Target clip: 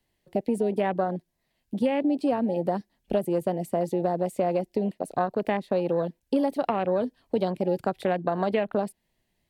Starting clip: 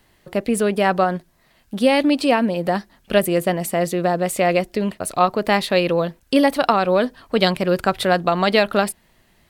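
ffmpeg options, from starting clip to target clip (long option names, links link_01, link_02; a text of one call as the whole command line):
ffmpeg -i in.wav -filter_complex "[0:a]afwtdn=0.0891,equalizer=frequency=1300:width=2.1:gain=-9.5,acrossover=split=200|1900[link_01][link_02][link_03];[link_01]acompressor=threshold=-40dB:ratio=4[link_04];[link_02]acompressor=threshold=-23dB:ratio=4[link_05];[link_03]acompressor=threshold=-44dB:ratio=4[link_06];[link_04][link_05][link_06]amix=inputs=3:normalize=0" out.wav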